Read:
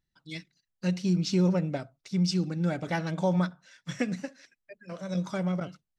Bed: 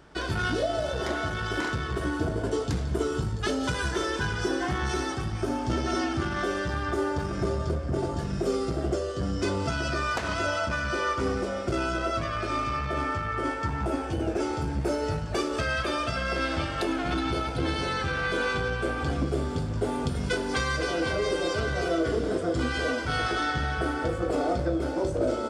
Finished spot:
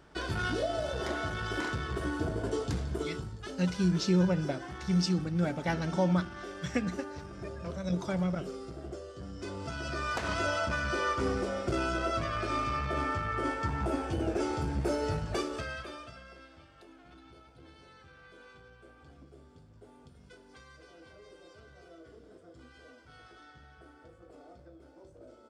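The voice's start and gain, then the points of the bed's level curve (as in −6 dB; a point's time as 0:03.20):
2.75 s, −1.5 dB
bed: 0:02.80 −4.5 dB
0:03.47 −14 dB
0:09.34 −14 dB
0:10.28 −3 dB
0:15.30 −3 dB
0:16.52 −27 dB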